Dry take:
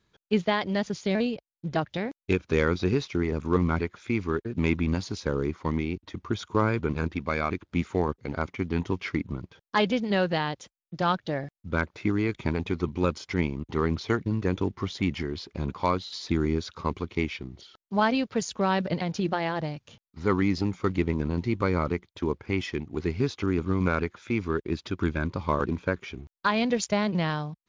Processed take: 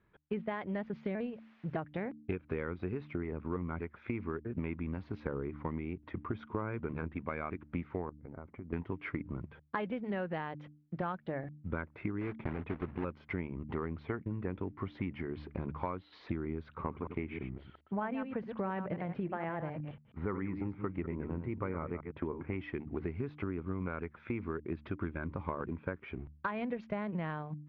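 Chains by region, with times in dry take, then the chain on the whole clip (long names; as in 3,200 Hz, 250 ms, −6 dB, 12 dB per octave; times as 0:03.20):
0:01.24–0:01.73: transient designer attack −5 dB, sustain −9 dB + background noise blue −49 dBFS
0:08.09–0:08.73: downward compressor 8 to 1, threshold −40 dBFS + parametric band 3,200 Hz −13.5 dB 2.3 octaves
0:12.21–0:13.05: one scale factor per block 3 bits + high-shelf EQ 4,700 Hz −8.5 dB
0:16.76–0:22.55: delay that plays each chunk backwards 105 ms, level −9.5 dB + low-pass filter 3,000 Hz
whole clip: low-pass filter 2,300 Hz 24 dB per octave; hum removal 74.41 Hz, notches 4; downward compressor 6 to 1, threshold −34 dBFS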